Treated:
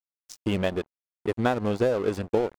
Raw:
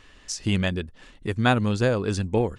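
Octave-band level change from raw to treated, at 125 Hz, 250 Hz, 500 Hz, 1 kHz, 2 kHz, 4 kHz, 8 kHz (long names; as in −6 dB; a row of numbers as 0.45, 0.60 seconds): −8.0 dB, −3.0 dB, +1.5 dB, −2.5 dB, −6.5 dB, −7.5 dB, below −10 dB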